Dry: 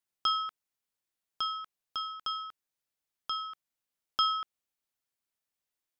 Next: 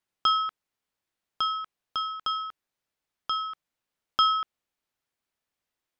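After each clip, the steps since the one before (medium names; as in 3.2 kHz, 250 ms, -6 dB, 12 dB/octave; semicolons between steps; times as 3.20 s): treble shelf 5.2 kHz -10.5 dB; trim +7 dB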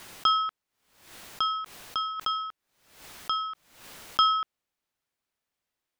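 swell ahead of each attack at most 84 dB/s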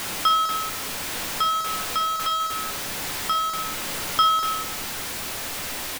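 jump at every zero crossing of -25 dBFS; delay 202 ms -9.5 dB; on a send at -7 dB: reverberation RT60 0.75 s, pre-delay 4 ms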